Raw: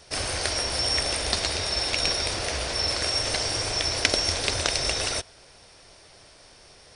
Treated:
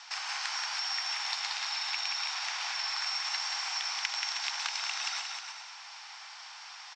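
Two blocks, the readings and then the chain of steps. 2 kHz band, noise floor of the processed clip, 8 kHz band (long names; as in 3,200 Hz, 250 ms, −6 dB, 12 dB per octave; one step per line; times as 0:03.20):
−4.5 dB, −48 dBFS, −10.0 dB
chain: Chebyshev band-pass filter 810–7,500 Hz, order 5
high-shelf EQ 3,900 Hz −7 dB
downward compressor 2.5 to 1, threshold −48 dBFS, peak gain reduction 19 dB
on a send: bouncing-ball delay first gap 180 ms, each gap 0.75×, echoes 5
on the sum: level +8 dB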